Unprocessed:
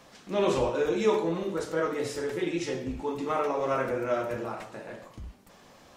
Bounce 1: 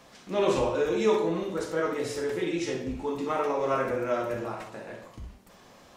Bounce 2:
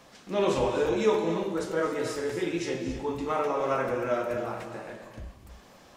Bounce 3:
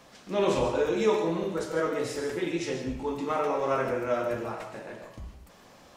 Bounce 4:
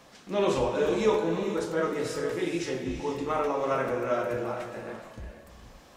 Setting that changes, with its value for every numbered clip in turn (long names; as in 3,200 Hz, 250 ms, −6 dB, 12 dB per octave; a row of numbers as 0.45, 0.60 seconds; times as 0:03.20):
reverb whose tail is shaped and stops, gate: 80, 310, 180, 510 milliseconds